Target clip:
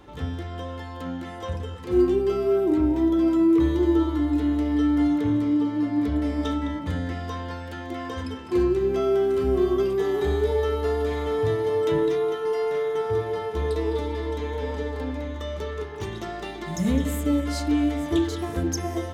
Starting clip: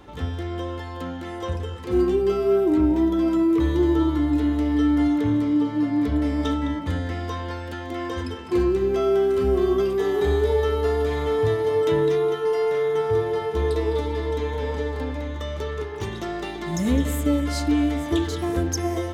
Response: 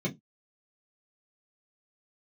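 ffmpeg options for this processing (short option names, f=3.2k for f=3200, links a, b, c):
-filter_complex "[0:a]asplit=2[a][b];[1:a]atrim=start_sample=2205,adelay=29[c];[b][c]afir=irnorm=-1:irlink=0,volume=-21dB[d];[a][d]amix=inputs=2:normalize=0,volume=-2.5dB"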